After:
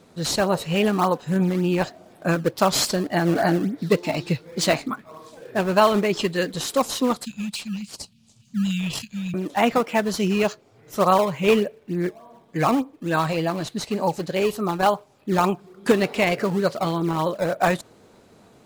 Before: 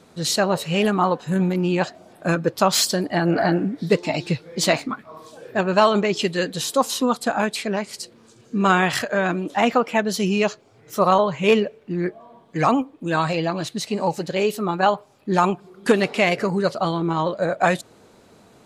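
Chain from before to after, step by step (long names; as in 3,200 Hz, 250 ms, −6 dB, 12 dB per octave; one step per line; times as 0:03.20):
0:07.25–0:09.34: Chebyshev band-stop filter 210–2,600 Hz, order 4
in parallel at −9.5 dB: sample-and-hold swept by an LFO 17×, swing 160% 3.4 Hz
on the sum: level −3 dB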